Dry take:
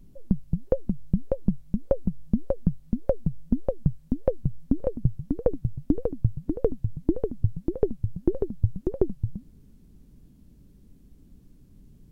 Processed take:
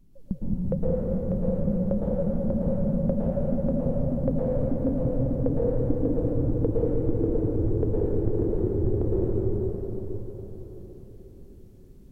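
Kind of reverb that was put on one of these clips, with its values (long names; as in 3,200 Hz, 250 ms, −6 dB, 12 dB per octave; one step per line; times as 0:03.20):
dense smooth reverb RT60 4.8 s, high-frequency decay 0.75×, pre-delay 100 ms, DRR −9 dB
level −7 dB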